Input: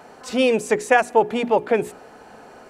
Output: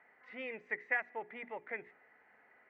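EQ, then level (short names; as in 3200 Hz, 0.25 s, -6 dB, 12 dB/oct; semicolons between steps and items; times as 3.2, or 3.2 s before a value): band-pass 2000 Hz, Q 16; air absorption 170 m; tilt -4 dB/oct; +5.0 dB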